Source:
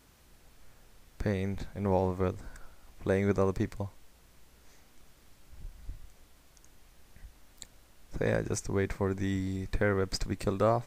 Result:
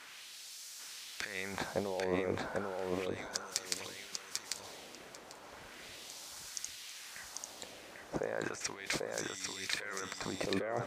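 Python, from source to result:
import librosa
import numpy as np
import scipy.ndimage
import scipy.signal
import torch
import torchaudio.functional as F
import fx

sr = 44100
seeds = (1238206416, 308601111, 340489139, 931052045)

y = fx.highpass(x, sr, hz=75.0, slope=6)
y = fx.high_shelf(y, sr, hz=3600.0, db=9.5)
y = fx.over_compress(y, sr, threshold_db=-38.0, ratio=-1.0)
y = fx.filter_lfo_bandpass(y, sr, shape='sine', hz=0.35, low_hz=500.0, high_hz=5500.0, q=1.2)
y = fx.echo_feedback(y, sr, ms=794, feedback_pct=18, wet_db=-3.0)
y = F.gain(torch.from_numpy(y), 8.5).numpy()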